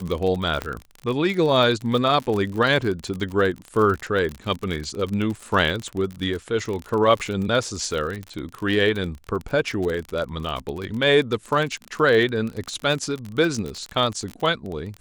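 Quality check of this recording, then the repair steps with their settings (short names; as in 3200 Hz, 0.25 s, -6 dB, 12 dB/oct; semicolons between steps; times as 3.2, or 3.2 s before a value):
crackle 42/s -26 dBFS
0.62 pop -12 dBFS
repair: de-click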